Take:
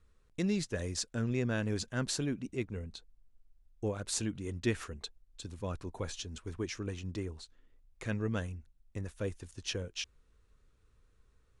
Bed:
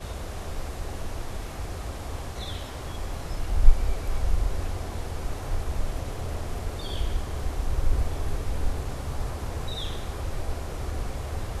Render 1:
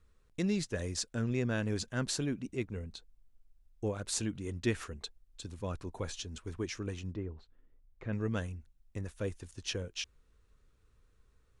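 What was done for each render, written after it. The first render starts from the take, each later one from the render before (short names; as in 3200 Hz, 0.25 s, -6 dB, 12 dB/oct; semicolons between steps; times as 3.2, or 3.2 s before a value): 7.13–8.13 tape spacing loss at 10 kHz 37 dB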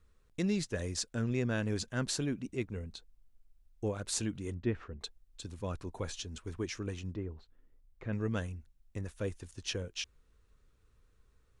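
4.54–5.01 tape spacing loss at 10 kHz 39 dB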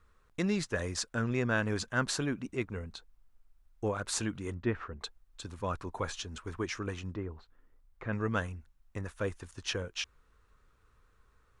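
bell 1200 Hz +10.5 dB 1.6 oct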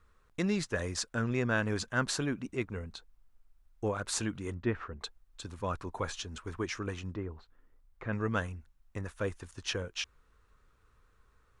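nothing audible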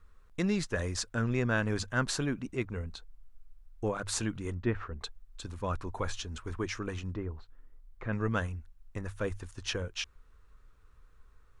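low shelf 65 Hz +12 dB; notches 50/100 Hz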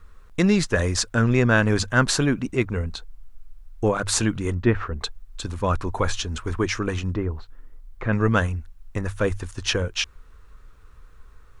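gain +11 dB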